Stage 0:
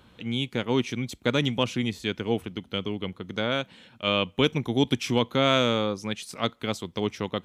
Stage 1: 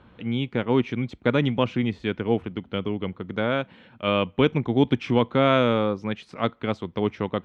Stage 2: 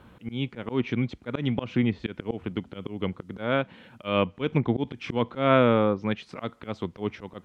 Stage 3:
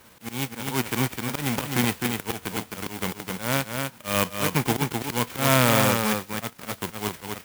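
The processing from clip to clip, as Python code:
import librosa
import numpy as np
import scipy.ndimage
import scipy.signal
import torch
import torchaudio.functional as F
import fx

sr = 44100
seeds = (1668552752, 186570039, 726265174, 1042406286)

y1 = scipy.signal.sosfilt(scipy.signal.butter(2, 2100.0, 'lowpass', fs=sr, output='sos'), x)
y1 = F.gain(torch.from_numpy(y1), 3.5).numpy()
y2 = fx.auto_swell(y1, sr, attack_ms=173.0)
y2 = fx.quant_dither(y2, sr, seeds[0], bits=12, dither='none')
y2 = fx.env_lowpass_down(y2, sr, base_hz=2600.0, full_db=-19.0)
y2 = F.gain(torch.from_numpy(y2), 1.0).numpy()
y3 = fx.envelope_flatten(y2, sr, power=0.3)
y3 = y3 + 10.0 ** (-4.5 / 20.0) * np.pad(y3, (int(257 * sr / 1000.0), 0))[:len(y3)]
y3 = fx.clock_jitter(y3, sr, seeds[1], jitter_ms=0.054)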